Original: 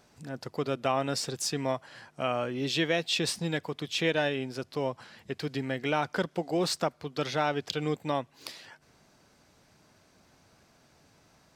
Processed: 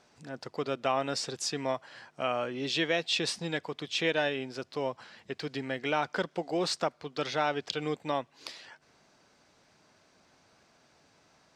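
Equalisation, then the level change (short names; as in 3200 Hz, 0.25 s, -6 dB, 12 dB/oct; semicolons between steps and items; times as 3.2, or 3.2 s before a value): LPF 7300 Hz 12 dB/oct; low shelf 190 Hz -10 dB; 0.0 dB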